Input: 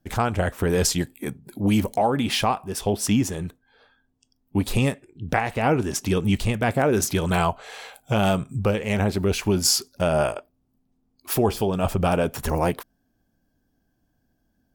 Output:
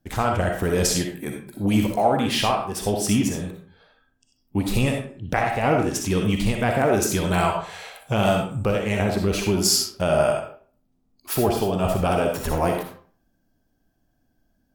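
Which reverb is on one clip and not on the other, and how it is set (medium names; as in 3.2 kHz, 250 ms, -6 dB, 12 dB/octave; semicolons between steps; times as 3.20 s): algorithmic reverb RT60 0.46 s, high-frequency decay 0.7×, pre-delay 20 ms, DRR 1.5 dB; trim -1 dB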